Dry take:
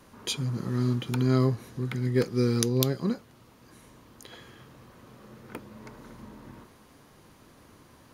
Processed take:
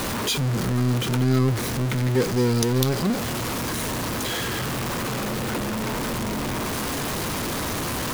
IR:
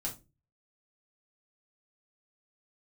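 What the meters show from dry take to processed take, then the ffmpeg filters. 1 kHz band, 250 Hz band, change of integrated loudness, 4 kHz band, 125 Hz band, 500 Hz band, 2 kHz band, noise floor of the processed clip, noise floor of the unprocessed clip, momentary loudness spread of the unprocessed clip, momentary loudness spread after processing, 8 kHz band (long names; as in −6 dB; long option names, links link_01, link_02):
+14.0 dB, +5.5 dB, +3.0 dB, +10.0 dB, +5.5 dB, +5.5 dB, +14.5 dB, −27 dBFS, −56 dBFS, 22 LU, 5 LU, +10.5 dB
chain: -af "aeval=exprs='val(0)+0.5*0.0841*sgn(val(0))':channel_layout=same"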